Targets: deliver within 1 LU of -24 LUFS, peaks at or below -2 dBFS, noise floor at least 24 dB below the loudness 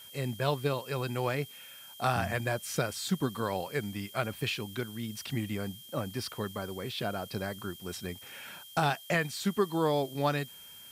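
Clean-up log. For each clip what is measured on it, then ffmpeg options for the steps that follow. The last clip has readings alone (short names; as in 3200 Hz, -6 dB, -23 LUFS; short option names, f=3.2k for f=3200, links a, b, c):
steady tone 3200 Hz; tone level -50 dBFS; noise floor -50 dBFS; noise floor target -57 dBFS; loudness -33.0 LUFS; peak -14.5 dBFS; loudness target -24.0 LUFS
-> -af "bandreject=f=3.2k:w=30"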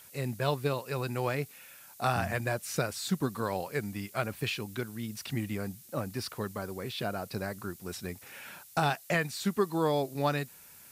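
steady tone none; noise floor -54 dBFS; noise floor target -57 dBFS
-> -af "afftdn=nr=6:nf=-54"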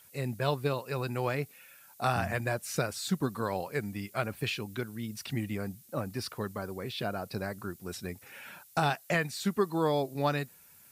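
noise floor -58 dBFS; loudness -33.5 LUFS; peak -14.5 dBFS; loudness target -24.0 LUFS
-> -af "volume=9.5dB"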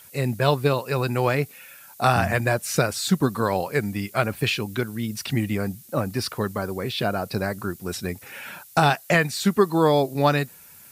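loudness -24.0 LUFS; peak -5.0 dBFS; noise floor -48 dBFS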